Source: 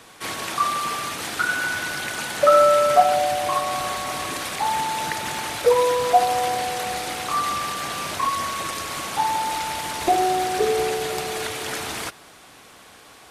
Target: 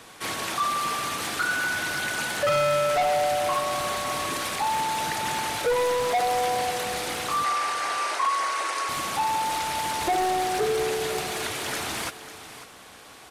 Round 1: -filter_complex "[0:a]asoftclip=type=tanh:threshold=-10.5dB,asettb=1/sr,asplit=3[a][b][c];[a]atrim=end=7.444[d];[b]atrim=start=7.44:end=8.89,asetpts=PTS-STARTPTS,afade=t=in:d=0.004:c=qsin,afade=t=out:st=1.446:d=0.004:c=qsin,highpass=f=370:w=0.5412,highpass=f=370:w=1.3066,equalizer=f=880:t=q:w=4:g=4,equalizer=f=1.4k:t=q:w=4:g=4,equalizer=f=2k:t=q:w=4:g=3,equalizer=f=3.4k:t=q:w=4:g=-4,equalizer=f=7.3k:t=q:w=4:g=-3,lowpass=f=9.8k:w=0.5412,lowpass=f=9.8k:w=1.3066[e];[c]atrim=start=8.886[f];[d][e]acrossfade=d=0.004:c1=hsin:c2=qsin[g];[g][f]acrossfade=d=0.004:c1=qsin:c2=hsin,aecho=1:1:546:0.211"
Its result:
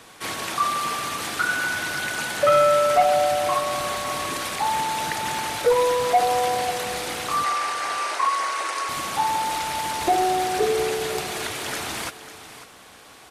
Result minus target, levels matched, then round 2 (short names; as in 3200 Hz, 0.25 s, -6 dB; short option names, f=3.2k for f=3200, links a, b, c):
soft clip: distortion -9 dB
-filter_complex "[0:a]asoftclip=type=tanh:threshold=-20dB,asettb=1/sr,asplit=3[a][b][c];[a]atrim=end=7.444[d];[b]atrim=start=7.44:end=8.89,asetpts=PTS-STARTPTS,afade=t=in:d=0.004:c=qsin,afade=t=out:st=1.446:d=0.004:c=qsin,highpass=f=370:w=0.5412,highpass=f=370:w=1.3066,equalizer=f=880:t=q:w=4:g=4,equalizer=f=1.4k:t=q:w=4:g=4,equalizer=f=2k:t=q:w=4:g=3,equalizer=f=3.4k:t=q:w=4:g=-4,equalizer=f=7.3k:t=q:w=4:g=-3,lowpass=f=9.8k:w=0.5412,lowpass=f=9.8k:w=1.3066[e];[c]atrim=start=8.886[f];[d][e]acrossfade=d=0.004:c1=hsin:c2=qsin[g];[g][f]acrossfade=d=0.004:c1=qsin:c2=hsin,aecho=1:1:546:0.211"